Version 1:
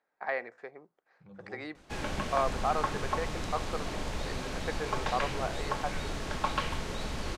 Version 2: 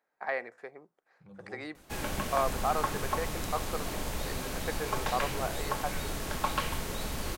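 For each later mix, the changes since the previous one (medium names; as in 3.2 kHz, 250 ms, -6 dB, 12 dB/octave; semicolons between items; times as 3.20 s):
master: remove low-pass 6 kHz 12 dB/octave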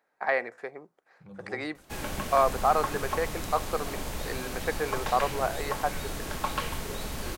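first voice +6.5 dB; second voice +5.0 dB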